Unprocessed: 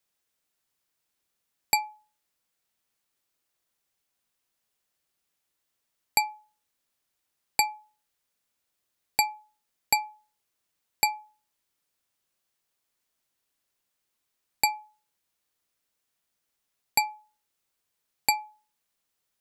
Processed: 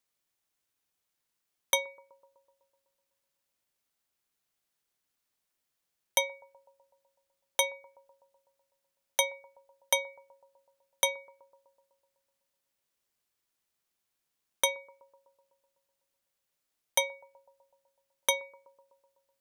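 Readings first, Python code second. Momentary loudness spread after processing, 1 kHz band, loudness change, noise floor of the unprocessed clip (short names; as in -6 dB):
15 LU, -9.0 dB, -2.5 dB, -81 dBFS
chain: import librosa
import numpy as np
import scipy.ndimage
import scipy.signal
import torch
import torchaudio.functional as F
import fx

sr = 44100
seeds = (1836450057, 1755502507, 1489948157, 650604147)

p1 = x * np.sin(2.0 * np.pi * 1400.0 * np.arange(len(x)) / sr)
y = p1 + fx.echo_bbd(p1, sr, ms=125, stages=1024, feedback_pct=67, wet_db=-22.0, dry=0)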